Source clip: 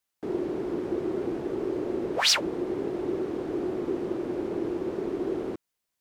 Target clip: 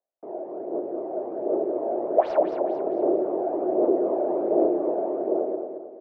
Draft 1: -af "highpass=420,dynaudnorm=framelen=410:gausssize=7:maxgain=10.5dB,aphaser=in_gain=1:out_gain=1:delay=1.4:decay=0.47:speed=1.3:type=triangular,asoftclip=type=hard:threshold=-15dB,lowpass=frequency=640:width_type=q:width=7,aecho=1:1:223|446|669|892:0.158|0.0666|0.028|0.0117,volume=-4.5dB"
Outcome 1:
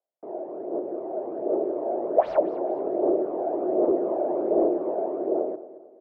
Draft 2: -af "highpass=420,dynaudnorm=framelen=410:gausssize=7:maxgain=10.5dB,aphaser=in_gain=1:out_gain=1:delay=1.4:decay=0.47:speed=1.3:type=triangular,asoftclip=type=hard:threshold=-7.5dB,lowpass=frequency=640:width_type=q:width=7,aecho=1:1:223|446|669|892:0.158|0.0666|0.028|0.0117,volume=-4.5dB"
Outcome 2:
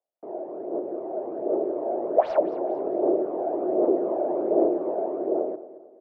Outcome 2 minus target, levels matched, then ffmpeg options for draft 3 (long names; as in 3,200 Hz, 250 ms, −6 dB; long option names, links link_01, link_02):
echo-to-direct −9 dB
-af "highpass=420,dynaudnorm=framelen=410:gausssize=7:maxgain=10.5dB,aphaser=in_gain=1:out_gain=1:delay=1.4:decay=0.47:speed=1.3:type=triangular,asoftclip=type=hard:threshold=-7.5dB,lowpass=frequency=640:width_type=q:width=7,aecho=1:1:223|446|669|892|1115:0.447|0.188|0.0788|0.0331|0.0139,volume=-4.5dB"